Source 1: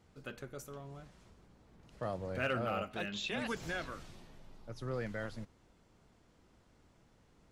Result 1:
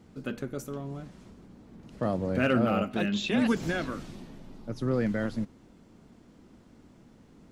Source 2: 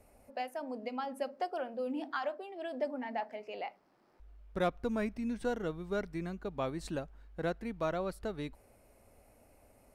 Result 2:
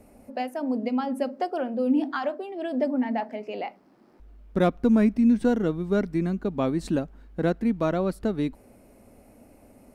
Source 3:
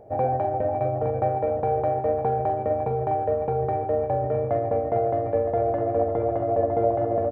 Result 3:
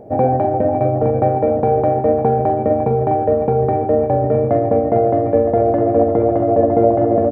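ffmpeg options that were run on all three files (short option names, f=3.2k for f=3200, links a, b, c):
-af "equalizer=f=240:w=1:g=11.5,volume=5.5dB"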